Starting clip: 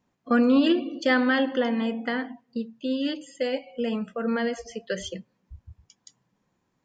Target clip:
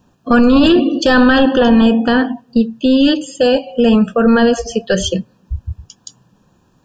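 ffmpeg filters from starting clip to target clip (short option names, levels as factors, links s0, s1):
-af "apsyclip=14.1,asuperstop=centerf=2100:order=8:qfactor=3.4,lowshelf=f=150:g=7.5,volume=0.473"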